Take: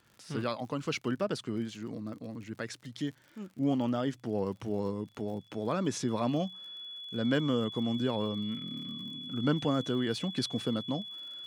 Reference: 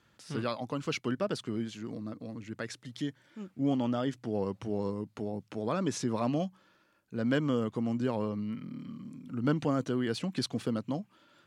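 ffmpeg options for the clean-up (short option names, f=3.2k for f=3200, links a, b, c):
-af "adeclick=t=4,bandreject=f=3.4k:w=30"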